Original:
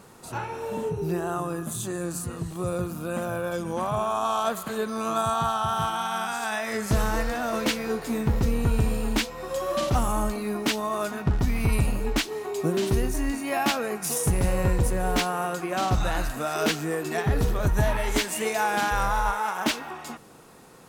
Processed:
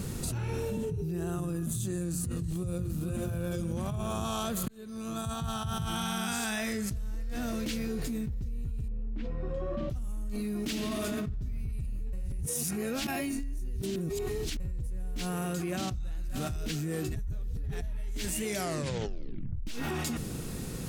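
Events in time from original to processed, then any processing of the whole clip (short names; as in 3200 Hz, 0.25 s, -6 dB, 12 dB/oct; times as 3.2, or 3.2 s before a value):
2.35–2.86 echo throw 0.46 s, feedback 55%, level -4 dB
4.68–8.21 fade in
8.88–9.9 LPF 1400 Hz
10.6–11.38 reverb throw, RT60 2.5 s, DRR 3 dB
12.13–14.6 reverse
15.66–16.1 echo throw 0.58 s, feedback 45%, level -7.5 dB
17.16–17.82 reverse
18.45 tape stop 1.22 s
whole clip: passive tone stack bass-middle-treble 10-0-1; fast leveller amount 100%; gain -7.5 dB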